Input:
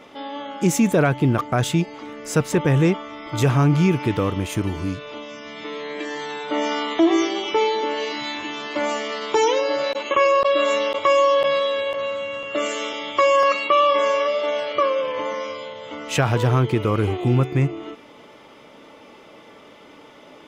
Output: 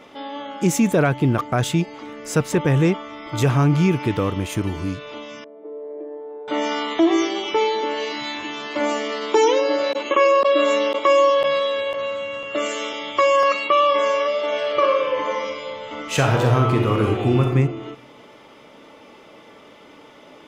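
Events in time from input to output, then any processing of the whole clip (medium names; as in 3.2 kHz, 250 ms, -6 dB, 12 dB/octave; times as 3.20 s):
5.44–6.48 s: Butterworth band-pass 460 Hz, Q 1.5
8.80–11.30 s: resonant high-pass 270 Hz, resonance Q 1.9
14.45–17.48 s: reverb throw, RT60 0.96 s, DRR 1.5 dB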